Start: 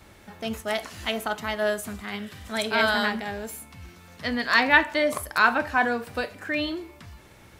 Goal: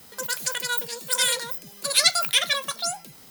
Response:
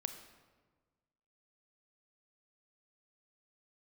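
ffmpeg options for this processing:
-af "asetrate=101430,aresample=44100,aemphasis=mode=production:type=50fm,volume=-3dB"

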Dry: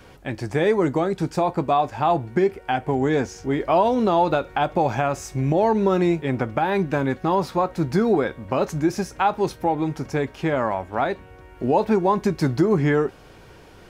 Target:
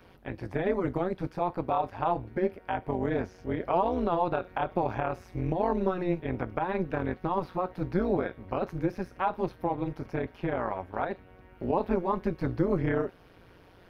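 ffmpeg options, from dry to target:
ffmpeg -i in.wav -filter_complex "[0:a]equalizer=frequency=7400:width_type=o:width=0.61:gain=-15,tremolo=f=180:d=0.889,acrossover=split=3100[link_01][link_02];[link_02]acompressor=threshold=-55dB:ratio=4:attack=1:release=60[link_03];[link_01][link_03]amix=inputs=2:normalize=0,volume=-4.5dB" out.wav

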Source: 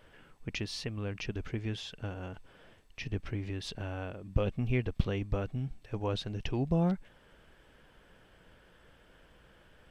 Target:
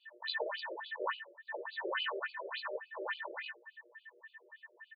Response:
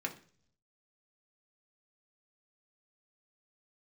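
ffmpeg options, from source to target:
-filter_complex "[0:a]afftfilt=real='re':imag='-im':win_size=4096:overlap=0.75,afftfilt=real='re*lt(hypot(re,im),0.0316)':imag='im*lt(hypot(re,im),0.0316)':win_size=1024:overlap=0.75,tiltshelf=frequency=940:gain=3.5,aecho=1:1:4:0.77,aecho=1:1:30|75|142.5|243.8|395.6:0.631|0.398|0.251|0.158|0.1,acrossover=split=520[link_01][link_02];[link_01]acompressor=mode=upward:threshold=-52dB:ratio=2.5[link_03];[link_03][link_02]amix=inputs=2:normalize=0,aeval=exprs='val(0)+0.00158*(sin(2*PI*60*n/s)+sin(2*PI*2*60*n/s)/2+sin(2*PI*3*60*n/s)/3+sin(2*PI*4*60*n/s)/4+sin(2*PI*5*60*n/s)/5)':channel_layout=same,aexciter=amount=10.5:drive=8.2:freq=7800,aeval=exprs='val(0)+0.00501*sin(2*PI*890*n/s)':channel_layout=same,agate=range=-33dB:threshold=-35dB:ratio=3:detection=peak,asetrate=88200,aresample=44100,afftfilt=real='re*between(b*sr/1024,430*pow(3500/430,0.5+0.5*sin(2*PI*3.5*pts/sr))/1.41,430*pow(3500/430,0.5+0.5*sin(2*PI*3.5*pts/sr))*1.41)':imag='im*between(b*sr/1024,430*pow(3500/430,0.5+0.5*sin(2*PI*3.5*pts/sr))/1.41,430*pow(3500/430,0.5+0.5*sin(2*PI*3.5*pts/sr))*1.41)':win_size=1024:overlap=0.75,volume=18dB"

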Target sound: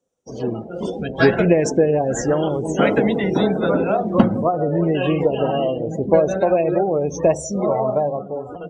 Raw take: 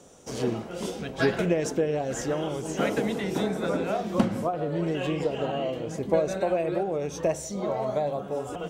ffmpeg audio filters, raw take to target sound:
ffmpeg -i in.wav -af "afftdn=noise_reduction=29:noise_floor=-37,dynaudnorm=framelen=120:gausssize=13:maxgain=8dB,volume=2dB" out.wav

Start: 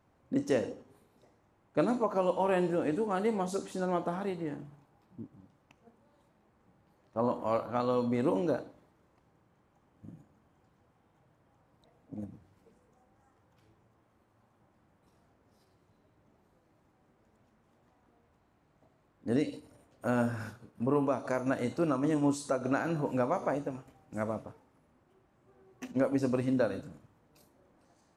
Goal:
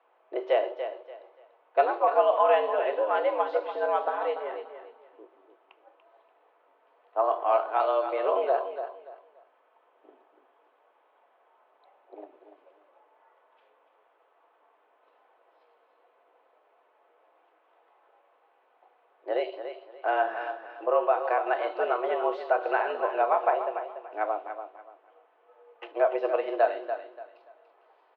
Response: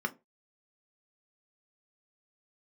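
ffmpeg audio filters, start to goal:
-filter_complex "[0:a]aecho=1:1:289|578|867:0.335|0.0871|0.0226,asplit=2[link_01][link_02];[1:a]atrim=start_sample=2205[link_03];[link_02][link_03]afir=irnorm=-1:irlink=0,volume=-11.5dB[link_04];[link_01][link_04]amix=inputs=2:normalize=0,highpass=frequency=410:width_type=q:width=0.5412,highpass=frequency=410:width_type=q:width=1.307,lowpass=frequency=3200:width_type=q:width=0.5176,lowpass=frequency=3200:width_type=q:width=0.7071,lowpass=frequency=3200:width_type=q:width=1.932,afreqshift=99,volume=8.5dB"

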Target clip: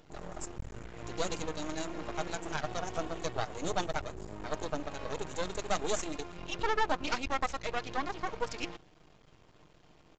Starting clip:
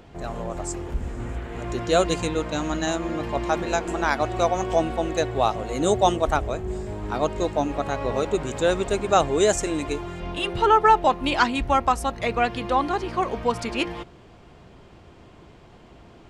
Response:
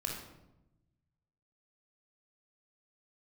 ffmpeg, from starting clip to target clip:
-af "aemphasis=mode=production:type=50kf,aecho=1:1:6.5:0.39,bandreject=frequency=64.94:width_type=h:width=4,bandreject=frequency=129.88:width_type=h:width=4,bandreject=frequency=194.82:width_type=h:width=4,bandreject=frequency=259.76:width_type=h:width=4,bandreject=frequency=324.7:width_type=h:width=4,asoftclip=type=hard:threshold=-9.5dB,atempo=1.6,aeval=exprs='max(val(0),0)':channel_layout=same,aresample=16000,aresample=44100,volume=-8.5dB"

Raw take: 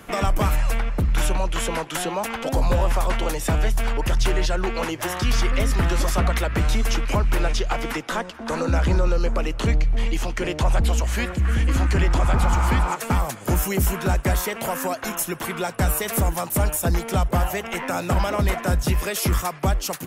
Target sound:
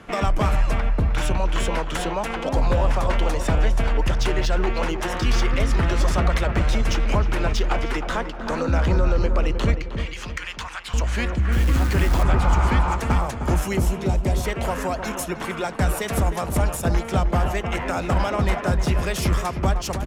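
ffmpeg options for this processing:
ffmpeg -i in.wav -filter_complex "[0:a]asettb=1/sr,asplit=3[link_01][link_02][link_03];[link_01]atrim=end=9.744[link_04];[link_02]atrim=start=9.74:end=10.94,asetpts=PTS-STARTPTS,afade=type=in:duration=0.004:curve=qsin,afade=type=out:start_time=1.196:duration=0.004:curve=qsin,highpass=frequency=1100:width=0.5412,highpass=frequency=1100:width=1.3066[link_05];[link_03]atrim=start=10.936[link_06];[link_04][link_05]acrossfade=duration=0.004:curve1=hsin:curve2=qsin[link_07];[link_07][link_06]acrossfade=duration=0.004:curve1=qsin:curve2=hsin,asettb=1/sr,asplit=3[link_08][link_09][link_10];[link_08]atrim=end=13.804[link_11];[link_09]atrim=start=13.8:end=14.45,asetpts=PTS-STARTPTS,afade=type=in:duration=0.004:curve=qsin,afade=type=out:start_time=0.646:duration=0.004:curve=qsin,equalizer=frequency=1500:width=1.3:gain=-14[link_12];[link_10]atrim=start=14.446[link_13];[link_11][link_12]acrossfade=duration=0.004:curve1=hsin:curve2=qsin[link_14];[link_14][link_13]acrossfade=duration=0.004:curve1=qsin:curve2=hsin,adynamicsmooth=sensitivity=3.5:basefreq=5500,asettb=1/sr,asplit=3[link_15][link_16][link_17];[link_15]atrim=end=11.524[link_18];[link_16]atrim=start=11.52:end=12.23,asetpts=PTS-STARTPTS,afade=type=in:duration=0.004:curve=qsin,afade=type=out:start_time=0.706:duration=0.004:curve=qsin,acrusher=bits=5:mode=log:mix=0:aa=0.000001[link_19];[link_17]atrim=start=12.226[link_20];[link_18][link_19]acrossfade=duration=0.004:curve1=hsin:curve2=qsin[link_21];[link_21][link_20]acrossfade=duration=0.004:curve1=qsin:curve2=hsin,asplit=2[link_22][link_23];[link_23]adelay=310,lowpass=frequency=1400:poles=1,volume=-7.5dB,asplit=2[link_24][link_25];[link_25]adelay=310,lowpass=frequency=1400:poles=1,volume=0.49,asplit=2[link_26][link_27];[link_27]adelay=310,lowpass=frequency=1400:poles=1,volume=0.49,asplit=2[link_28][link_29];[link_29]adelay=310,lowpass=frequency=1400:poles=1,volume=0.49,asplit=2[link_30][link_31];[link_31]adelay=310,lowpass=frequency=1400:poles=1,volume=0.49,asplit=2[link_32][link_33];[link_33]adelay=310,lowpass=frequency=1400:poles=1,volume=0.49[link_34];[link_22][link_24][link_26][link_28][link_30][link_32][link_34]amix=inputs=7:normalize=0" out.wav

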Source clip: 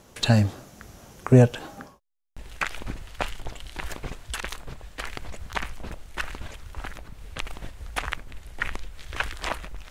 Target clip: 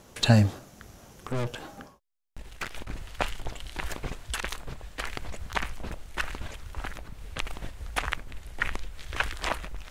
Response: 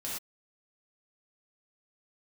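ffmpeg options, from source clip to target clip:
-filter_complex "[0:a]asettb=1/sr,asplit=3[link_01][link_02][link_03];[link_01]atrim=end=0.584[link_04];[link_02]atrim=start=0.58:end=2.93,asetpts=PTS-STARTPTS,afade=type=in:duration=0.004:curve=qsin,afade=type=out:start_time=2.346:duration=0.004:curve=qsin,aeval=exprs='(tanh(25.1*val(0)+0.6)-tanh(0.6))/25.1':channel_layout=same[link_05];[link_03]atrim=start=2.926[link_06];[link_04][link_05]acrossfade=duration=0.004:curve1=hsin:curve2=qsin[link_07];[link_07][link_06]acrossfade=duration=0.004:curve1=qsin:curve2=hsin"

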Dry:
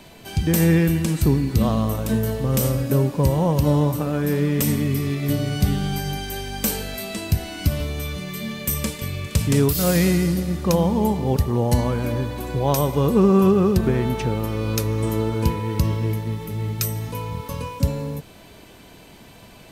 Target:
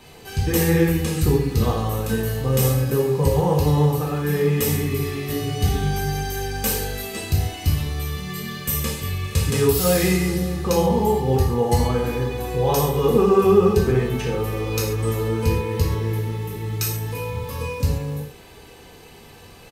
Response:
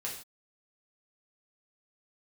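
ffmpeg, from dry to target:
-filter_complex "[0:a]aecho=1:1:2.4:0.44[link_01];[1:a]atrim=start_sample=2205,atrim=end_sample=6615[link_02];[link_01][link_02]afir=irnorm=-1:irlink=0"

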